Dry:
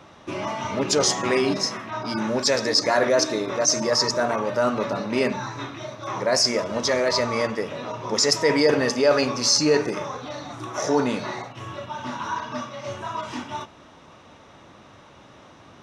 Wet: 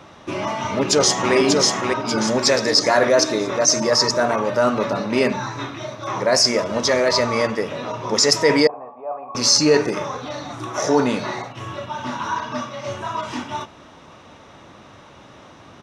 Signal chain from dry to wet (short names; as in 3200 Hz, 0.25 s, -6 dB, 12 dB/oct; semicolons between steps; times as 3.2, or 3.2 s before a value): 0.59–1.34 echo throw 0.59 s, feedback 45%, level -3 dB; 8.67–9.35 vocal tract filter a; gain +4 dB